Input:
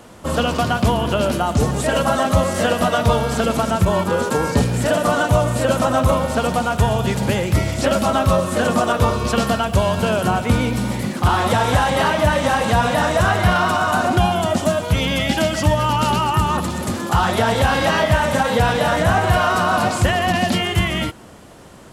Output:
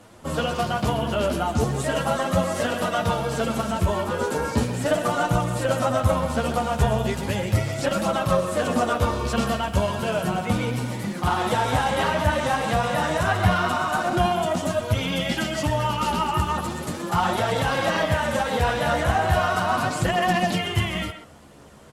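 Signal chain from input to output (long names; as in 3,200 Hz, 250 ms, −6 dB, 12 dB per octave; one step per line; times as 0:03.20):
multi-voice chorus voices 2, 0.37 Hz, delay 10 ms, depth 4.4 ms
far-end echo of a speakerphone 130 ms, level −9 dB
harmonic generator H 4 −26 dB, 7 −37 dB, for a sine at −3.5 dBFS
level −2.5 dB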